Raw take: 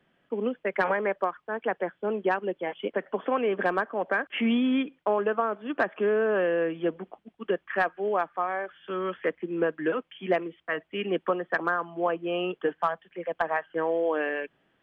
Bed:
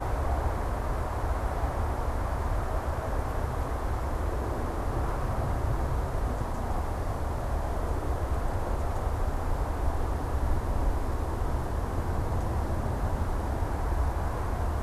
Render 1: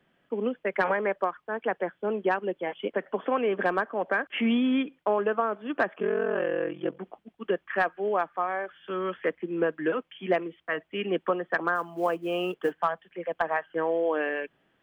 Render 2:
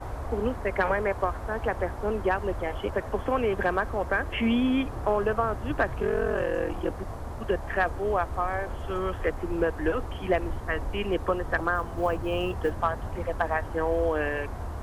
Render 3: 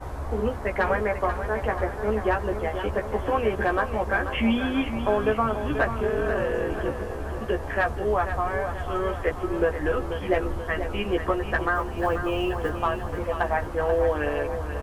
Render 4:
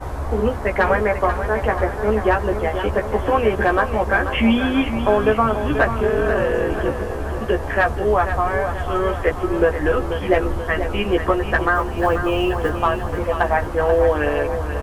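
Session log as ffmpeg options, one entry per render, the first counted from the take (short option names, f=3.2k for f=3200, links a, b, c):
-filter_complex "[0:a]asettb=1/sr,asplit=3[a][b][c];[a]atrim=end=5.944[d];[b]atrim=start=5.94:end=6.99,asetpts=PTS-STARTPTS,afade=t=in:d=0.004:c=qsin,afade=t=out:st=1.046:d=0.004:c=qsin,aeval=exprs='val(0)*sin(2*PI*22*n/s)':c=same[e];[c]atrim=start=6.986[f];[d][e]acrossfade=d=0.004:c1=hsin:c2=qsin[g];[g][f]acrossfade=d=0.004:c1=qsin:c2=hsin,asettb=1/sr,asplit=3[h][i][j];[h]atrim=end=11.754[k];[i]atrim=start=11.75:end=12.8,asetpts=PTS-STARTPTS,afade=t=in:d=0.004:c=qsin,afade=t=out:st=1.046:d=0.004:c=qsin,acrusher=bits=8:mode=log:mix=0:aa=0.000001[l];[j]atrim=start=12.796[m];[k][l]acrossfade=d=0.004:c1=hsin:c2=qsin[n];[n][m]acrossfade=d=0.004:c1=qsin:c2=hsin"
-filter_complex "[1:a]volume=-5.5dB[a];[0:a][a]amix=inputs=2:normalize=0"
-filter_complex "[0:a]asplit=2[a][b];[b]adelay=14,volume=-4dB[c];[a][c]amix=inputs=2:normalize=0,aecho=1:1:485|970|1455|1940|2425|2910:0.335|0.184|0.101|0.0557|0.0307|0.0169"
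-af "volume=6.5dB"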